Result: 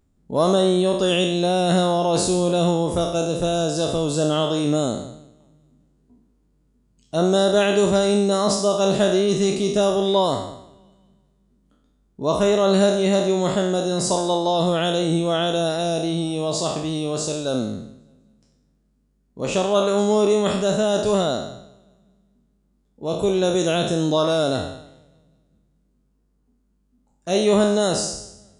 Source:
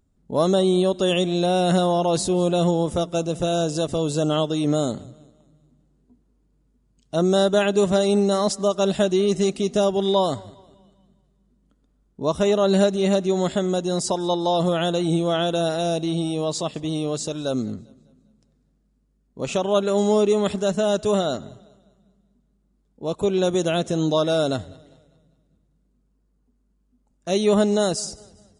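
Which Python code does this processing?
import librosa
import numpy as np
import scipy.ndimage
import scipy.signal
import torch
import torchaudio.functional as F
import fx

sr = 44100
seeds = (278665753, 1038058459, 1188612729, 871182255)

y = fx.spec_trails(x, sr, decay_s=0.77)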